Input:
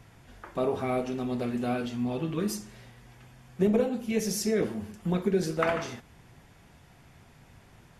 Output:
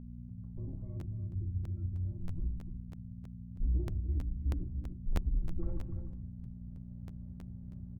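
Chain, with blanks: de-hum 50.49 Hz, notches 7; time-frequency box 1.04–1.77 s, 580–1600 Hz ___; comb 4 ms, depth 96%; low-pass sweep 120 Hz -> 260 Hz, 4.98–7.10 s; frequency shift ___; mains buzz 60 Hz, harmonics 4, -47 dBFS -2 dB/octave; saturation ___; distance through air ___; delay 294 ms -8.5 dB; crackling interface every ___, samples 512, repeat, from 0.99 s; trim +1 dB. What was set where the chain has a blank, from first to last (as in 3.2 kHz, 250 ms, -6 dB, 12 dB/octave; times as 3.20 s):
-19 dB, -150 Hz, -24 dBFS, 240 m, 0.32 s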